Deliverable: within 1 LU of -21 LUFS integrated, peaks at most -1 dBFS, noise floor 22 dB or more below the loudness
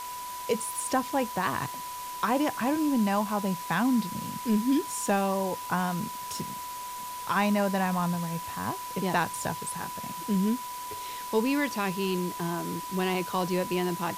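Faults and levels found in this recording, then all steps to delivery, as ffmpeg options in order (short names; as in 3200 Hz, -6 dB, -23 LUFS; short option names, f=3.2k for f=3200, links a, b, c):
steady tone 990 Hz; tone level -36 dBFS; noise floor -38 dBFS; noise floor target -52 dBFS; loudness -29.5 LUFS; peak -13.5 dBFS; loudness target -21.0 LUFS
-> -af "bandreject=f=990:w=30"
-af "afftdn=nr=14:nf=-38"
-af "volume=8.5dB"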